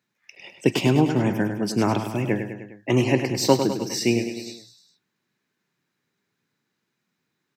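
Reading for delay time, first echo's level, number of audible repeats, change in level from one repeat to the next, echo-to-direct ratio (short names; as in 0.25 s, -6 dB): 0.102 s, -8.5 dB, 4, -4.5 dB, -6.5 dB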